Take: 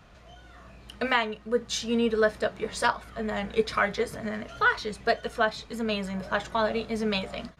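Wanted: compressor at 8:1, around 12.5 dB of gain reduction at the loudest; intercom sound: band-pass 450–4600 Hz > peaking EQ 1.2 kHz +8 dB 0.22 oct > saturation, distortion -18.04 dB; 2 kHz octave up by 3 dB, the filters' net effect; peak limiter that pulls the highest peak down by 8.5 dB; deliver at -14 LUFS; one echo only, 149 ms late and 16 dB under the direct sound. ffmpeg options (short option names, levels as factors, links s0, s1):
-af "equalizer=f=2000:t=o:g=3.5,acompressor=threshold=0.0316:ratio=8,alimiter=level_in=1.19:limit=0.0631:level=0:latency=1,volume=0.841,highpass=450,lowpass=4600,equalizer=f=1200:t=o:w=0.22:g=8,aecho=1:1:149:0.158,asoftclip=threshold=0.0422,volume=18.8"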